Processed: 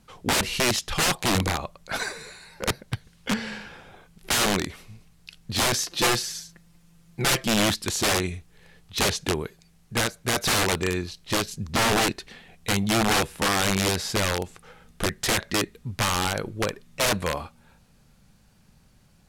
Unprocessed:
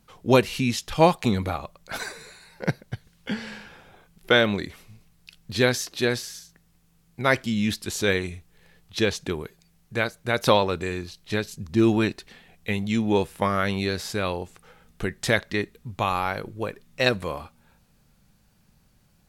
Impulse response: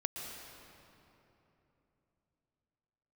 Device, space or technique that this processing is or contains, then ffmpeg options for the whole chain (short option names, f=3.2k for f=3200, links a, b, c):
overflowing digital effects unit: -filter_complex "[0:a]aeval=exprs='(mod(9.44*val(0)+1,2)-1)/9.44':c=same,lowpass=12k,asettb=1/sr,asplit=3[a][b][c];[a]atrim=end=5.894[d];[b]atrim=start=5.89:end=7.48,asetpts=PTS-STARTPTS,afade=t=in:d=0.004:c=qsin,afade=t=out:st=1.586:d=0.004:c=qsin,aecho=1:1:5.8:0.74,atrim=end_sample=70119[e];[c]atrim=start=7.476[f];[d][e]acrossfade=d=0.004:c1=hsin:c2=qsin[g];[g][f]acrossfade=d=0.004:c1=qsin:c2=hsin,volume=3.5dB"